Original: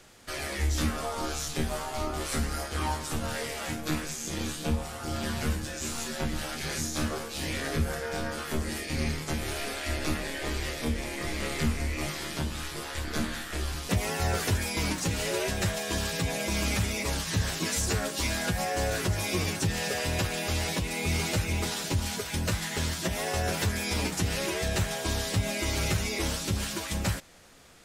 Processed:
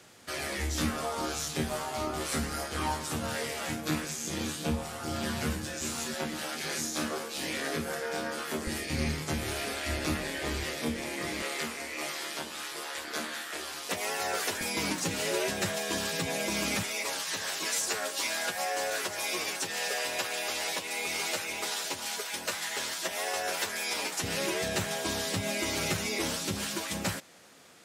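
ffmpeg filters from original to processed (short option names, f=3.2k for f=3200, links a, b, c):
-af "asetnsamples=n=441:p=0,asendcmd='6.14 highpass f 230;8.67 highpass f 66;10.64 highpass f 150;11.42 highpass f 440;14.61 highpass f 190;16.83 highpass f 520;24.23 highpass f 170',highpass=100"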